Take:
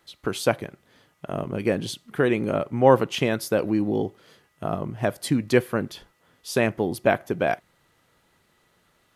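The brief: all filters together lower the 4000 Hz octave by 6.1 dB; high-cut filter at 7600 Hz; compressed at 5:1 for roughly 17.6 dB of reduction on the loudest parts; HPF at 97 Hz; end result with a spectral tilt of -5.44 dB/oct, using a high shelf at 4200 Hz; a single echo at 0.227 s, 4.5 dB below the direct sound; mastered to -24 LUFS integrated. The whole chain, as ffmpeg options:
-af "highpass=97,lowpass=7.6k,equalizer=f=4k:t=o:g=-4,highshelf=f=4.2k:g=-7,acompressor=threshold=-31dB:ratio=5,aecho=1:1:227:0.596,volume=12dB"

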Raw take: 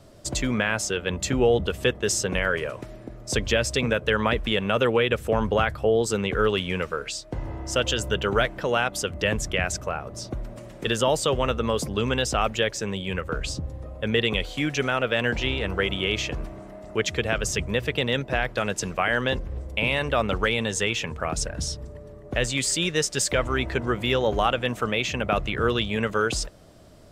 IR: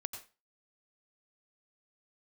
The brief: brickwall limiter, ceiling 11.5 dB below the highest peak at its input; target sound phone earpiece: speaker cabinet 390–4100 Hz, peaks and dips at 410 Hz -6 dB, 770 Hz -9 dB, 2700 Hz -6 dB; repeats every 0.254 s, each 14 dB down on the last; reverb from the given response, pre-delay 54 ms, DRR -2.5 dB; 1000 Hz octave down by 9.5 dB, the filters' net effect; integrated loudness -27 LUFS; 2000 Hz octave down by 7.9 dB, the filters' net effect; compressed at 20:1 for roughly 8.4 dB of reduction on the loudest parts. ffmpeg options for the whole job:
-filter_complex "[0:a]equalizer=f=1k:t=o:g=-7.5,equalizer=f=2k:t=o:g=-5.5,acompressor=threshold=-26dB:ratio=20,alimiter=level_in=1dB:limit=-24dB:level=0:latency=1,volume=-1dB,aecho=1:1:254|508:0.2|0.0399,asplit=2[a][b];[1:a]atrim=start_sample=2205,adelay=54[c];[b][c]afir=irnorm=-1:irlink=0,volume=3.5dB[d];[a][d]amix=inputs=2:normalize=0,highpass=390,equalizer=f=410:t=q:w=4:g=-6,equalizer=f=770:t=q:w=4:g=-9,equalizer=f=2.7k:t=q:w=4:g=-6,lowpass=f=4.1k:w=0.5412,lowpass=f=4.1k:w=1.3066,volume=11dB"

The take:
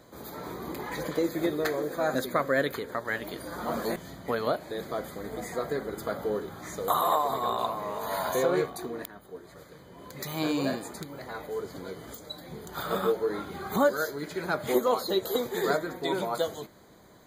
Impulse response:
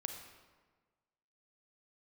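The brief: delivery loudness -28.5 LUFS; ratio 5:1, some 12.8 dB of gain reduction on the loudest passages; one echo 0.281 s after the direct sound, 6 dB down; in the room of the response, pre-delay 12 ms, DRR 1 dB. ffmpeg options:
-filter_complex "[0:a]acompressor=threshold=-34dB:ratio=5,aecho=1:1:281:0.501,asplit=2[a][b];[1:a]atrim=start_sample=2205,adelay=12[c];[b][c]afir=irnorm=-1:irlink=0,volume=0dB[d];[a][d]amix=inputs=2:normalize=0,volume=6.5dB"

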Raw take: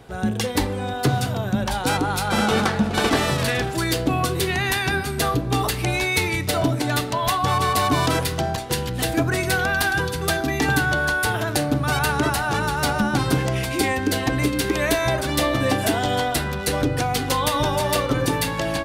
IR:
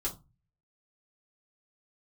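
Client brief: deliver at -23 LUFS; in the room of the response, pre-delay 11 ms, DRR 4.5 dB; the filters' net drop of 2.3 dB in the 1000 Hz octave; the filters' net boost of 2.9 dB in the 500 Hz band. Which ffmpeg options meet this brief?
-filter_complex "[0:a]equalizer=f=500:t=o:g=5,equalizer=f=1k:t=o:g=-5,asplit=2[a][b];[1:a]atrim=start_sample=2205,adelay=11[c];[b][c]afir=irnorm=-1:irlink=0,volume=-7.5dB[d];[a][d]amix=inputs=2:normalize=0,volume=-3dB"

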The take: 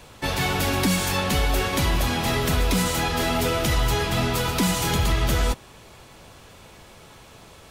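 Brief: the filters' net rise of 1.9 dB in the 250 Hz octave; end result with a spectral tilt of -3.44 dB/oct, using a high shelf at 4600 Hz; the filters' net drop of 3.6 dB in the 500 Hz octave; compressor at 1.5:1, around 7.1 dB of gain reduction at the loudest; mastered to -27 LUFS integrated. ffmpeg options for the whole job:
-af "equalizer=f=250:t=o:g=4,equalizer=f=500:t=o:g=-6,highshelf=f=4.6k:g=7,acompressor=threshold=-37dB:ratio=1.5,volume=1dB"

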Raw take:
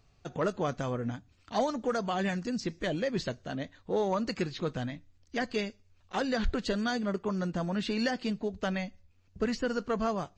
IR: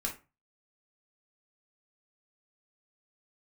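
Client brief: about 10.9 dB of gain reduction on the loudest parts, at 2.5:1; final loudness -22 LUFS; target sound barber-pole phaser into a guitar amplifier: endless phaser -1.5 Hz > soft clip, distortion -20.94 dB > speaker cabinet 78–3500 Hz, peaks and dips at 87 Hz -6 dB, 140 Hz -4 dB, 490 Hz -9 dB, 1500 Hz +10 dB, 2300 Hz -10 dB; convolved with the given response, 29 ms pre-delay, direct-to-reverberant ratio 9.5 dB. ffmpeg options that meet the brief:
-filter_complex "[0:a]acompressor=threshold=-40dB:ratio=2.5,asplit=2[a][b];[1:a]atrim=start_sample=2205,adelay=29[c];[b][c]afir=irnorm=-1:irlink=0,volume=-12dB[d];[a][d]amix=inputs=2:normalize=0,asplit=2[e][f];[f]afreqshift=-1.5[g];[e][g]amix=inputs=2:normalize=1,asoftclip=threshold=-32.5dB,highpass=78,equalizer=f=87:t=q:w=4:g=-6,equalizer=f=140:t=q:w=4:g=-4,equalizer=f=490:t=q:w=4:g=-9,equalizer=f=1.5k:t=q:w=4:g=10,equalizer=f=2.3k:t=q:w=4:g=-10,lowpass=f=3.5k:w=0.5412,lowpass=f=3.5k:w=1.3066,volume=23dB"

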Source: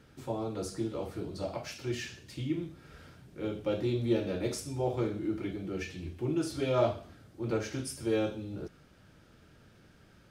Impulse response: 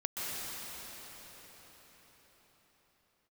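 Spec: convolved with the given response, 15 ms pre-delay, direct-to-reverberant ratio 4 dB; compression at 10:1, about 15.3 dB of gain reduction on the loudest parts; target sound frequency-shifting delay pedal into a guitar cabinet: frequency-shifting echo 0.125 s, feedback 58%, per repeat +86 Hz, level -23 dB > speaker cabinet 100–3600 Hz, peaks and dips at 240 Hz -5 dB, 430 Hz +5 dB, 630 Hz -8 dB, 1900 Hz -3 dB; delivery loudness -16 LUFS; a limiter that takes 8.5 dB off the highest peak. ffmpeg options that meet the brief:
-filter_complex "[0:a]acompressor=threshold=-38dB:ratio=10,alimiter=level_in=12.5dB:limit=-24dB:level=0:latency=1,volume=-12.5dB,asplit=2[a][b];[1:a]atrim=start_sample=2205,adelay=15[c];[b][c]afir=irnorm=-1:irlink=0,volume=-10dB[d];[a][d]amix=inputs=2:normalize=0,asplit=5[e][f][g][h][i];[f]adelay=125,afreqshift=86,volume=-23dB[j];[g]adelay=250,afreqshift=172,volume=-27.7dB[k];[h]adelay=375,afreqshift=258,volume=-32.5dB[l];[i]adelay=500,afreqshift=344,volume=-37.2dB[m];[e][j][k][l][m]amix=inputs=5:normalize=0,highpass=100,equalizer=f=240:t=q:w=4:g=-5,equalizer=f=430:t=q:w=4:g=5,equalizer=f=630:t=q:w=4:g=-8,equalizer=f=1.9k:t=q:w=4:g=-3,lowpass=f=3.6k:w=0.5412,lowpass=f=3.6k:w=1.3066,volume=29.5dB"

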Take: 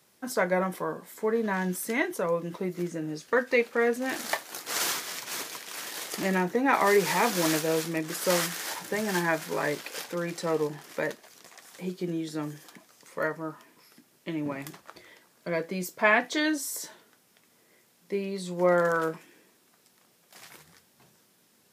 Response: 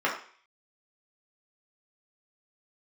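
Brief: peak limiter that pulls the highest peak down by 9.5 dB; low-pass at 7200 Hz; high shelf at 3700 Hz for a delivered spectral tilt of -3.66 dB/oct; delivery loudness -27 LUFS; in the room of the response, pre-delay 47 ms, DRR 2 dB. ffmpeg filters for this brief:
-filter_complex "[0:a]lowpass=7.2k,highshelf=f=3.7k:g=5,alimiter=limit=-16.5dB:level=0:latency=1,asplit=2[a][b];[1:a]atrim=start_sample=2205,adelay=47[c];[b][c]afir=irnorm=-1:irlink=0,volume=-15dB[d];[a][d]amix=inputs=2:normalize=0,volume=1.5dB"

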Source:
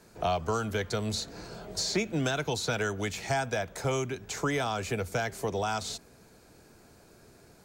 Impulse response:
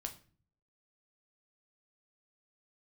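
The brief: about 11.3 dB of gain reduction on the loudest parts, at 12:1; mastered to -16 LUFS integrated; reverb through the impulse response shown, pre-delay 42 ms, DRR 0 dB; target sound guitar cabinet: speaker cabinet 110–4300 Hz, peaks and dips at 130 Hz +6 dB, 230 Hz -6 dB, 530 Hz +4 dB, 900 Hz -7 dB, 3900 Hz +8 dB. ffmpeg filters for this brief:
-filter_complex "[0:a]acompressor=threshold=-36dB:ratio=12,asplit=2[a][b];[1:a]atrim=start_sample=2205,adelay=42[c];[b][c]afir=irnorm=-1:irlink=0,volume=2dB[d];[a][d]amix=inputs=2:normalize=0,highpass=110,equalizer=f=130:t=q:w=4:g=6,equalizer=f=230:t=q:w=4:g=-6,equalizer=f=530:t=q:w=4:g=4,equalizer=f=900:t=q:w=4:g=-7,equalizer=f=3.9k:t=q:w=4:g=8,lowpass=f=4.3k:w=0.5412,lowpass=f=4.3k:w=1.3066,volume=21.5dB"

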